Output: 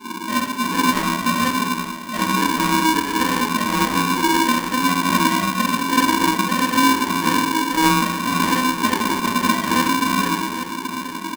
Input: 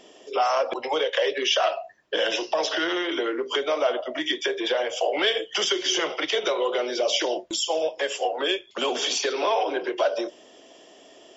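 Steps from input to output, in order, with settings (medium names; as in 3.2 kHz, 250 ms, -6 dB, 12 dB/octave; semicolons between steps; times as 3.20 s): dead-time distortion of 0.058 ms; FFT band-pass 220–470 Hz; compression, threshold -33 dBFS, peak gain reduction 10.5 dB; square tremolo 1.7 Hz, depth 60%, duty 75%; valve stage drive 43 dB, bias 0.25; doubling 13 ms -3 dB; feedback delay 827 ms, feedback 56%, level -12 dB; reverberation RT60 1.1 s, pre-delay 3 ms, DRR -7 dB; polarity switched at an audio rate 640 Hz; trim +7 dB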